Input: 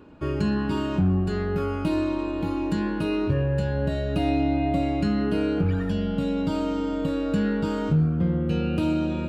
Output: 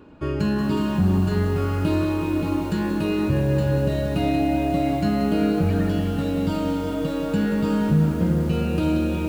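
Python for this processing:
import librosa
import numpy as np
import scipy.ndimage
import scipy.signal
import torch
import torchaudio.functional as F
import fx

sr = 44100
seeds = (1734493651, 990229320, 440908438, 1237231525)

y = fx.echo_tape(x, sr, ms=386, feedback_pct=41, wet_db=-7.5, lp_hz=2200.0, drive_db=17.0, wow_cents=27)
y = fx.echo_crushed(y, sr, ms=182, feedback_pct=80, bits=7, wet_db=-9.5)
y = F.gain(torch.from_numpy(y), 1.5).numpy()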